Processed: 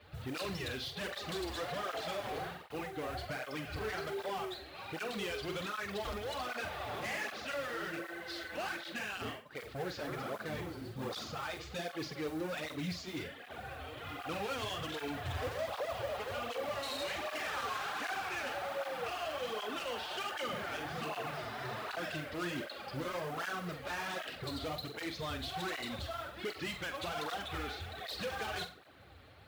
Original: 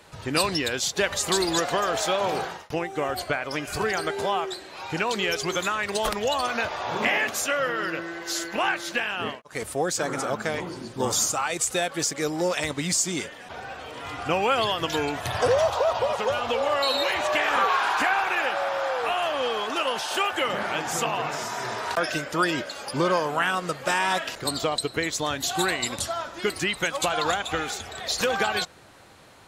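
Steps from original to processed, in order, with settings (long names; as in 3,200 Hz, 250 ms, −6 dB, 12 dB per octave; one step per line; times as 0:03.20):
Butterworth low-pass 4,400 Hz
parametric band 67 Hz +11.5 dB 1.1 octaves
notch filter 960 Hz, Q 8
in parallel at −6 dB: wave folding −26.5 dBFS
on the sum: noise that follows the level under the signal 20 dB
soft clipping −24 dBFS, distortion −13 dB
on a send: flutter between parallel walls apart 7.8 metres, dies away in 0.32 s
on the sum: through-zero flanger with one copy inverted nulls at 1.3 Hz, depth 6.3 ms
level −8.5 dB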